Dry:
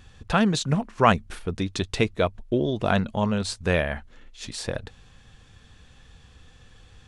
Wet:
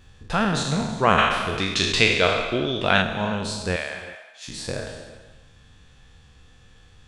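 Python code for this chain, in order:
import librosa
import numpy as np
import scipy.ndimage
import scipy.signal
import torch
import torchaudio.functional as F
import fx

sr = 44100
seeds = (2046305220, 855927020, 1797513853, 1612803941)

y = fx.spec_trails(x, sr, decay_s=0.99)
y = fx.peak_eq(y, sr, hz=2900.0, db=12.0, octaves=2.3, at=(1.18, 3.02))
y = fx.highpass(y, sr, hz=890.0, slope=12, at=(3.76, 4.48))
y = fx.rev_gated(y, sr, seeds[0], gate_ms=410, shape='flat', drr_db=10.5)
y = y * librosa.db_to_amplitude(-3.5)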